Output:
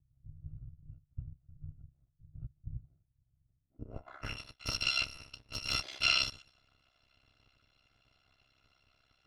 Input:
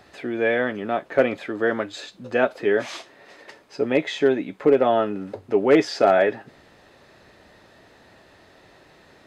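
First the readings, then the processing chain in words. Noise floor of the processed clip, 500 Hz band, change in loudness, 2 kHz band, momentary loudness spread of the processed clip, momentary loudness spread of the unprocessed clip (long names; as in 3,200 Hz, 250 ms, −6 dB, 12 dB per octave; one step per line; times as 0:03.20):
−78 dBFS, −37.0 dB, −11.5 dB, −11.0 dB, 23 LU, 14 LU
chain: samples in bit-reversed order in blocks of 256 samples
high-shelf EQ 3,400 Hz −9 dB
low-pass filter sweep 110 Hz → 3,900 Hz, 0:03.54–0:04.43
ring modulation 33 Hz
one half of a high-frequency compander decoder only
level −5 dB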